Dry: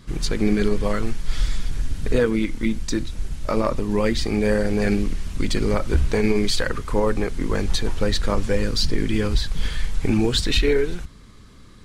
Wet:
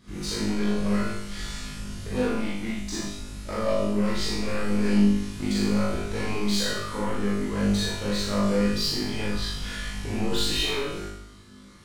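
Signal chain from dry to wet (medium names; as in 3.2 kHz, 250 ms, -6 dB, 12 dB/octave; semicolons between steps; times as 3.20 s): high-pass 69 Hz 6 dB/octave; saturation -20 dBFS, distortion -11 dB; on a send: flutter echo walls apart 3.4 m, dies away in 0.77 s; on the sum: Schroeder reverb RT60 0.32 s, combs from 32 ms, DRR -3 dB; trim -9 dB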